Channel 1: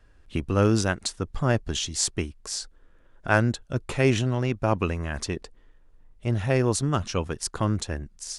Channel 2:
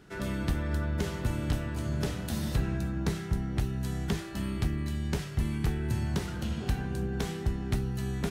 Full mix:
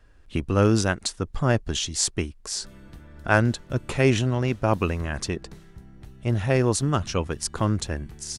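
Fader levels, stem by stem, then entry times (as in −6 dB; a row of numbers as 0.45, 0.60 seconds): +1.5, −15.5 decibels; 0.00, 2.45 seconds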